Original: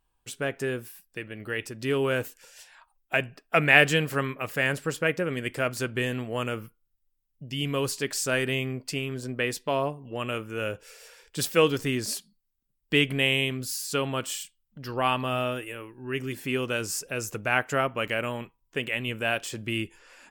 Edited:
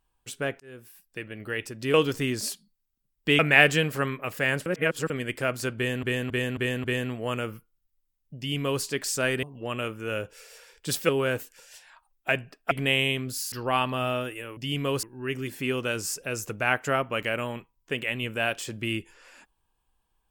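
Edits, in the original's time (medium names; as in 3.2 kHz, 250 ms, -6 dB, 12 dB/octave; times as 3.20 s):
0.60–1.21 s: fade in
1.94–3.56 s: swap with 11.59–13.04 s
4.83–5.27 s: reverse
5.93–6.20 s: loop, 5 plays
7.46–7.92 s: copy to 15.88 s
8.52–9.93 s: delete
13.85–14.83 s: delete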